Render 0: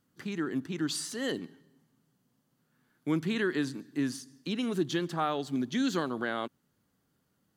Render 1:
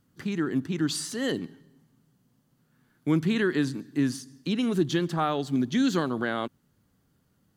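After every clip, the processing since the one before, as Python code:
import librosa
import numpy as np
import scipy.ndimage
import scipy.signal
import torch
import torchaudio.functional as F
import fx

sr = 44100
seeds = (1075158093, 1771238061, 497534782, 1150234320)

y = fx.low_shelf(x, sr, hz=140.0, db=10.5)
y = y * librosa.db_to_amplitude(3.0)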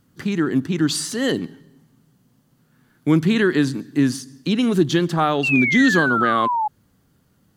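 y = fx.spec_paint(x, sr, seeds[0], shape='fall', start_s=5.43, length_s=1.25, low_hz=830.0, high_hz=2800.0, level_db=-28.0)
y = y * librosa.db_to_amplitude(7.5)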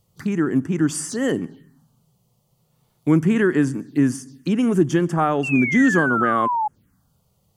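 y = fx.env_phaser(x, sr, low_hz=260.0, high_hz=4000.0, full_db=-21.5)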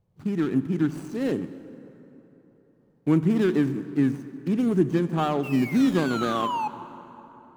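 y = scipy.ndimage.median_filter(x, 25, mode='constant')
y = fx.rev_plate(y, sr, seeds[1], rt60_s=3.7, hf_ratio=0.55, predelay_ms=0, drr_db=12.5)
y = y * librosa.db_to_amplitude(-4.0)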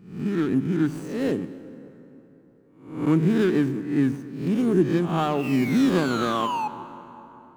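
y = fx.spec_swells(x, sr, rise_s=0.57)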